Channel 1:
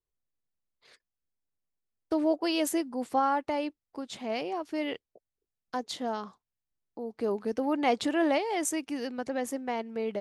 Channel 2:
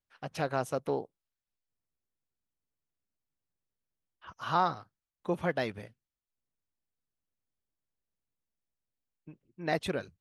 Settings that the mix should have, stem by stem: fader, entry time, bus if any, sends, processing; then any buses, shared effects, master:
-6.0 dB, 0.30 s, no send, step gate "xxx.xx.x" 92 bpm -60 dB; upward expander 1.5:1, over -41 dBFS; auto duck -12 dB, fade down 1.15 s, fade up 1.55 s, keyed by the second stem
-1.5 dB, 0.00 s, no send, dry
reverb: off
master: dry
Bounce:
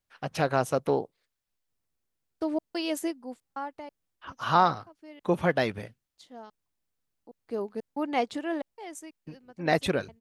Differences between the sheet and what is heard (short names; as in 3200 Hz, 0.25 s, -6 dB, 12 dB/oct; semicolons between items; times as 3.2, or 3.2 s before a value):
stem 1 -6.0 dB -> +0.5 dB; stem 2 -1.5 dB -> +6.0 dB